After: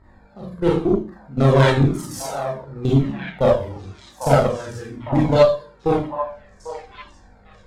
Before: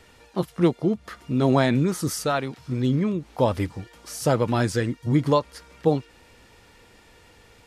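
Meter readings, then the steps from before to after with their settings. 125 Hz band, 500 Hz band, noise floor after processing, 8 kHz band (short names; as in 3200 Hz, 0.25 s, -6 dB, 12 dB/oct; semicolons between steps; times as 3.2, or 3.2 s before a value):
+5.0 dB, +6.0 dB, -51 dBFS, -1.5 dB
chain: Wiener smoothing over 15 samples; low shelf 80 Hz +8.5 dB; notches 60/120/180/240/300 Hz; level quantiser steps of 20 dB; buzz 50 Hz, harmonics 34, -59 dBFS -5 dB/oct; Schroeder reverb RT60 0.46 s, combs from 29 ms, DRR -5 dB; added harmonics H 8 -23 dB, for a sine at -1.5 dBFS; delay with a stepping band-pass 0.796 s, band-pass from 830 Hz, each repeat 1.4 oct, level -6.5 dB; cascading flanger falling 0.99 Hz; gain +7 dB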